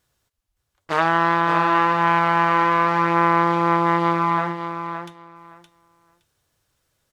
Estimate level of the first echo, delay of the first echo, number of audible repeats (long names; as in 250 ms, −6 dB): −8.0 dB, 567 ms, 2